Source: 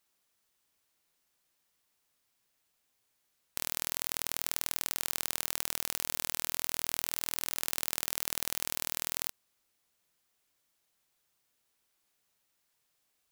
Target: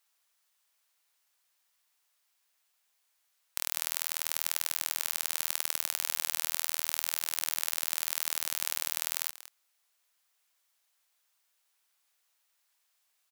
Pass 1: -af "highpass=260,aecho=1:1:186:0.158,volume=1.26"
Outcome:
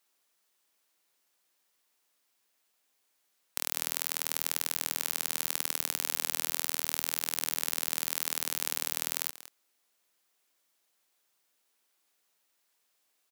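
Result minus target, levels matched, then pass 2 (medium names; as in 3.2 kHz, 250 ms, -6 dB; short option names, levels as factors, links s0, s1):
250 Hz band +14.5 dB
-af "highpass=760,aecho=1:1:186:0.158,volume=1.26"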